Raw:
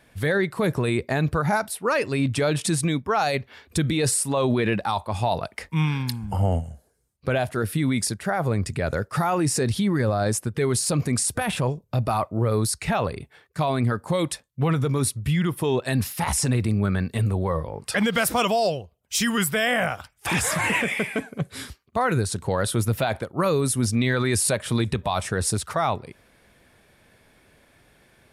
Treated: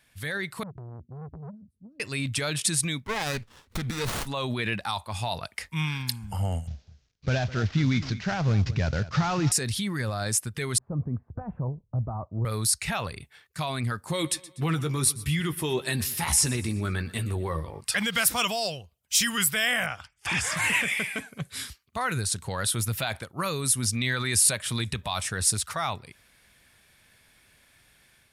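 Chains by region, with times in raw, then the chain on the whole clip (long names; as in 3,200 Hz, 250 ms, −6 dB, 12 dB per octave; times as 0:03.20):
0:00.63–0:02.00: inverse Chebyshev low-pass filter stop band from 790 Hz, stop band 60 dB + downward compressor 4 to 1, threshold −25 dBFS + saturating transformer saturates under 440 Hz
0:03.04–0:04.27: EQ curve with evenly spaced ripples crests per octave 0.93, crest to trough 8 dB + windowed peak hold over 17 samples
0:06.67–0:09.52: variable-slope delta modulation 32 kbit/s + low-shelf EQ 430 Hz +9.5 dB + single-tap delay 206 ms −16 dB
0:10.78–0:12.45: Bessel low-pass filter 630 Hz, order 6 + low-shelf EQ 75 Hz +9 dB
0:14.06–0:17.81: parametric band 350 Hz +8.5 dB 0.56 octaves + double-tracking delay 13 ms −9 dB + repeating echo 122 ms, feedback 47%, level −18.5 dB
0:19.86–0:20.57: high-frequency loss of the air 73 metres + notch filter 3,900 Hz, Q 7.9
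whole clip: guitar amp tone stack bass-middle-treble 5-5-5; automatic gain control gain up to 4.5 dB; level +4.5 dB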